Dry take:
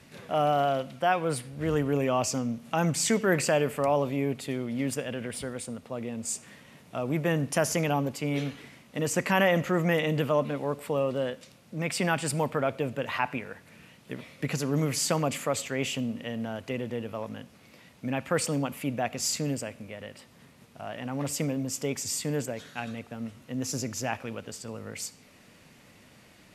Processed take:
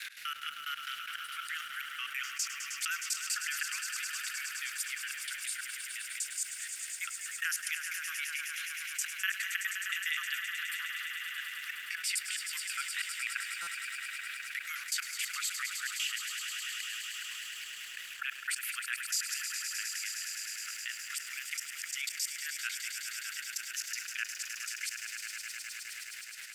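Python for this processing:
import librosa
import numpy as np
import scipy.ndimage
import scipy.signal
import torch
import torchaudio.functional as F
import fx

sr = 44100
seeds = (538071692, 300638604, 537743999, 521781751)

p1 = fx.block_reorder(x, sr, ms=124.0, group=2)
p2 = fx.step_gate(p1, sr, bpm=182, pattern='x.xx.x..', floor_db=-24.0, edge_ms=4.5)
p3 = scipy.signal.sosfilt(scipy.signal.butter(12, 1400.0, 'highpass', fs=sr, output='sos'), p2)
p4 = fx.peak_eq(p3, sr, hz=7200.0, db=-3.5, octaves=1.1)
p5 = fx.echo_swell(p4, sr, ms=104, loudest=5, wet_db=-14)
p6 = np.where(np.abs(p5) >= 10.0 ** (-54.5 / 20.0), p5, 0.0)
p7 = p5 + (p6 * librosa.db_to_amplitude(-10.5))
p8 = fx.high_shelf(p7, sr, hz=9400.0, db=5.0)
p9 = fx.buffer_glitch(p8, sr, at_s=(13.62,), block=256, repeats=8)
p10 = fx.env_flatten(p9, sr, amount_pct=50)
y = p10 * librosa.db_to_amplitude(-4.5)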